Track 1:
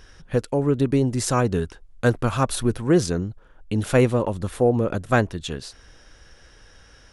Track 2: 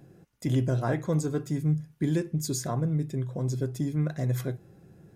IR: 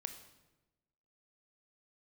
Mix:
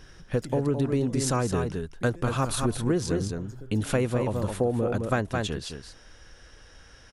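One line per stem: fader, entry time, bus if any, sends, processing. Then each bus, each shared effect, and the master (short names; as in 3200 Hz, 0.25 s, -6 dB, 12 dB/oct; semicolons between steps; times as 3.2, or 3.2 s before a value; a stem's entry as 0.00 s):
-1.5 dB, 0.00 s, no send, echo send -7.5 dB, dry
-6.5 dB, 0.00 s, no send, no echo send, AGC gain up to 9.5 dB; compressor 6:1, threshold -25 dBFS, peak gain reduction 12.5 dB; auto duck -9 dB, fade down 1.00 s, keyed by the first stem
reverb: off
echo: echo 0.214 s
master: compressor, threshold -21 dBFS, peak gain reduction 8 dB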